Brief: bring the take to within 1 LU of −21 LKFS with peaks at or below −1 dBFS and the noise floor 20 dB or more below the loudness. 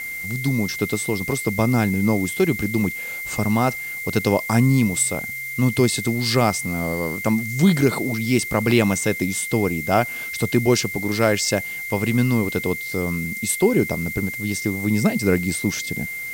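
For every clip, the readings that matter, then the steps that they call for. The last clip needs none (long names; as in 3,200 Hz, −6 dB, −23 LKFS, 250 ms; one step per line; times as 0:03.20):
interfering tone 2,100 Hz; level of the tone −28 dBFS; background noise floor −30 dBFS; target noise floor −41 dBFS; integrated loudness −21.0 LKFS; sample peak −4.5 dBFS; target loudness −21.0 LKFS
→ notch filter 2,100 Hz, Q 30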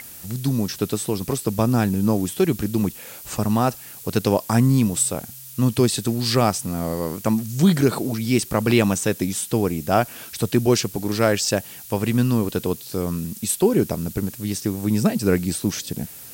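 interfering tone none found; background noise floor −40 dBFS; target noise floor −42 dBFS
→ noise reduction from a noise print 6 dB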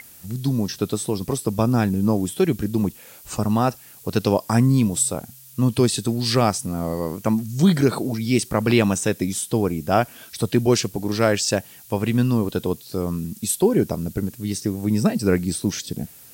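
background noise floor −46 dBFS; integrated loudness −22.0 LKFS; sample peak −4.5 dBFS; target loudness −21.0 LKFS
→ level +1 dB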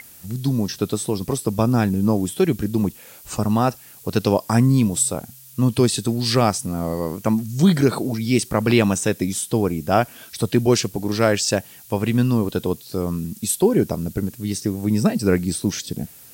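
integrated loudness −21.0 LKFS; sample peak −3.5 dBFS; background noise floor −45 dBFS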